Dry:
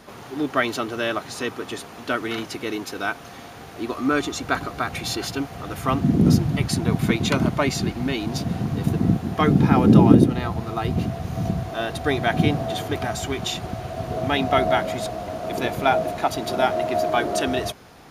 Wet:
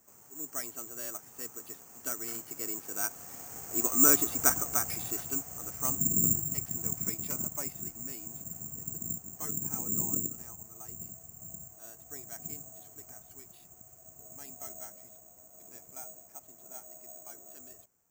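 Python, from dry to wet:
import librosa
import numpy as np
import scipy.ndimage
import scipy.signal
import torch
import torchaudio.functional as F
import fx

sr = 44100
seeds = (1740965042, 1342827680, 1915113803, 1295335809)

y = fx.doppler_pass(x, sr, speed_mps=5, closest_m=3.2, pass_at_s=4.15)
y = scipy.signal.sosfilt(scipy.signal.butter(2, 2600.0, 'lowpass', fs=sr, output='sos'), y)
y = (np.kron(scipy.signal.resample_poly(y, 1, 6), np.eye(6)[0]) * 6)[:len(y)]
y = y * librosa.db_to_amplitude(-8.0)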